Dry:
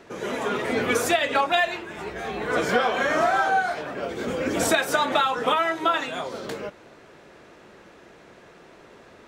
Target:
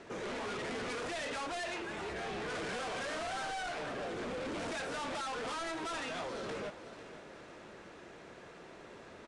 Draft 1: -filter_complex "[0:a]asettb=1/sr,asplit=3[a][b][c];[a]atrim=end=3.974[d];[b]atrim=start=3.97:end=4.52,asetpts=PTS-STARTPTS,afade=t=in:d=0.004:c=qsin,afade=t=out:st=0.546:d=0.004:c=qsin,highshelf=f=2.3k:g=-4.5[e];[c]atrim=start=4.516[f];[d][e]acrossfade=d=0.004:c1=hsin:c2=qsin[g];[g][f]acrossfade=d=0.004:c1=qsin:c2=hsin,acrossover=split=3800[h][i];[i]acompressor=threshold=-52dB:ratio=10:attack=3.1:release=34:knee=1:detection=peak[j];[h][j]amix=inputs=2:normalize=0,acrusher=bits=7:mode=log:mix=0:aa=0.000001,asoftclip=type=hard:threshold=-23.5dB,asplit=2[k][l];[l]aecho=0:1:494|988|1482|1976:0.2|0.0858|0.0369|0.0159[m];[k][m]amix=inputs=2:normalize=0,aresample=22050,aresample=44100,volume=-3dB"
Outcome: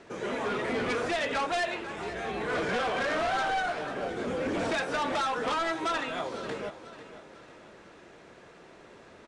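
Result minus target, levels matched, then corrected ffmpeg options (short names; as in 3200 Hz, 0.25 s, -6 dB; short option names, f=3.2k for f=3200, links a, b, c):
hard clip: distortion -6 dB
-filter_complex "[0:a]asettb=1/sr,asplit=3[a][b][c];[a]atrim=end=3.974[d];[b]atrim=start=3.97:end=4.52,asetpts=PTS-STARTPTS,afade=t=in:d=0.004:c=qsin,afade=t=out:st=0.546:d=0.004:c=qsin,highshelf=f=2.3k:g=-4.5[e];[c]atrim=start=4.516[f];[d][e]acrossfade=d=0.004:c1=hsin:c2=qsin[g];[g][f]acrossfade=d=0.004:c1=qsin:c2=hsin,acrossover=split=3800[h][i];[i]acompressor=threshold=-52dB:ratio=10:attack=3.1:release=34:knee=1:detection=peak[j];[h][j]amix=inputs=2:normalize=0,acrusher=bits=7:mode=log:mix=0:aa=0.000001,asoftclip=type=hard:threshold=-35dB,asplit=2[k][l];[l]aecho=0:1:494|988|1482|1976:0.2|0.0858|0.0369|0.0159[m];[k][m]amix=inputs=2:normalize=0,aresample=22050,aresample=44100,volume=-3dB"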